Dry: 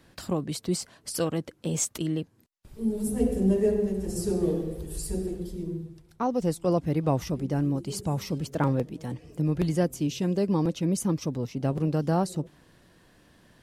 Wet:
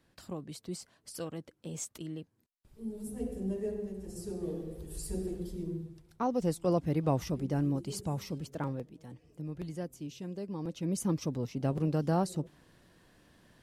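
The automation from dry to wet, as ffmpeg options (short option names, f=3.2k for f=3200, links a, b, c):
-af "volume=6dB,afade=t=in:st=4.39:d=1.03:silence=0.398107,afade=t=out:st=7.74:d=1.17:silence=0.316228,afade=t=in:st=10.58:d=0.53:silence=0.316228"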